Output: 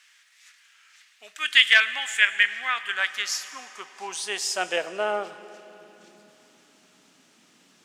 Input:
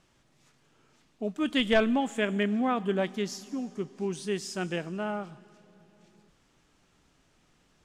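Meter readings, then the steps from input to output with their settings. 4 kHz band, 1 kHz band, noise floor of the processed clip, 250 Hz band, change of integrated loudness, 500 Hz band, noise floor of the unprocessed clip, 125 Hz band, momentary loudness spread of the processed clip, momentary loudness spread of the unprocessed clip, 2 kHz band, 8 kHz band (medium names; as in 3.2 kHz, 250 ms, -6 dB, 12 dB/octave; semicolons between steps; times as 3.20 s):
+13.0 dB, +2.0 dB, -60 dBFS, -19.0 dB, +7.5 dB, -3.0 dB, -67 dBFS, under -20 dB, 21 LU, 12 LU, +14.0 dB, +12.0 dB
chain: tilt shelf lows -5.5 dB, about 1.3 kHz; high-pass sweep 1.8 kHz -> 230 Hz, 2.71–6.40 s; spring tank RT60 3.6 s, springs 38/54 ms, chirp 80 ms, DRR 15 dB; trim +6.5 dB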